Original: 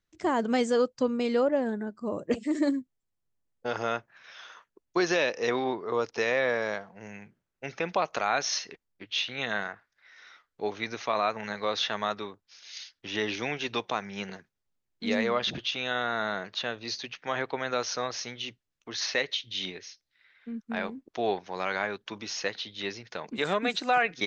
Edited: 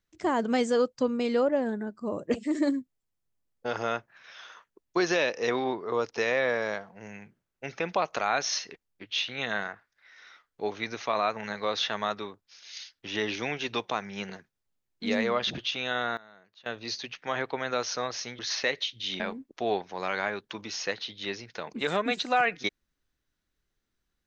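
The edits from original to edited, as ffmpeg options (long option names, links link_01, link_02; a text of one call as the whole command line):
ffmpeg -i in.wav -filter_complex "[0:a]asplit=5[link_01][link_02][link_03][link_04][link_05];[link_01]atrim=end=16.17,asetpts=PTS-STARTPTS,afade=type=out:start_time=16.02:duration=0.15:curve=log:silence=0.0749894[link_06];[link_02]atrim=start=16.17:end=16.66,asetpts=PTS-STARTPTS,volume=-22.5dB[link_07];[link_03]atrim=start=16.66:end=18.392,asetpts=PTS-STARTPTS,afade=type=in:duration=0.15:curve=log:silence=0.0749894[link_08];[link_04]atrim=start=18.898:end=19.712[link_09];[link_05]atrim=start=20.768[link_10];[link_06][link_07][link_08]concat=n=3:v=0:a=1[link_11];[link_11][link_09]acrossfade=duration=0.004:curve1=hsin:curve2=hsin[link_12];[link_12][link_10]acrossfade=duration=0.004:curve1=hsin:curve2=hsin" out.wav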